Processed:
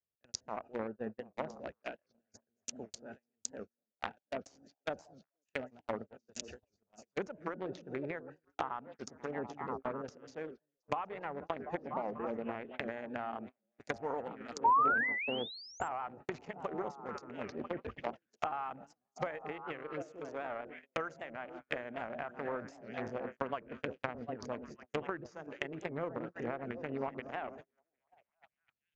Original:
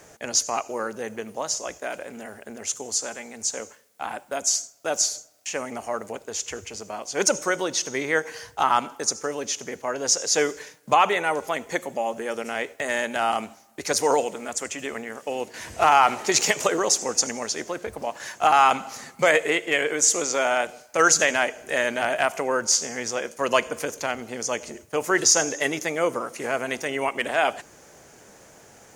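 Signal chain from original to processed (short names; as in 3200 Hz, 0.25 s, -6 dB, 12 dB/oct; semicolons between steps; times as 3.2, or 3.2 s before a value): Wiener smoothing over 41 samples; in parallel at 0 dB: vocal rider within 5 dB 0.5 s; on the sum: passive tone stack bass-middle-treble 5-5-5; on a send: delay with a stepping band-pass 0.246 s, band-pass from 200 Hz, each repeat 0.7 oct, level -5 dB; on the sum: gate -43 dBFS, range -43 dB; air absorption 79 m; compressor 10:1, threshold -38 dBFS, peak gain reduction 17 dB; painted sound rise, 14.64–15.89, 890–7400 Hz -29 dBFS; treble ducked by the level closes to 950 Hz, closed at -40.5 dBFS; record warp 78 rpm, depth 160 cents; gain +7.5 dB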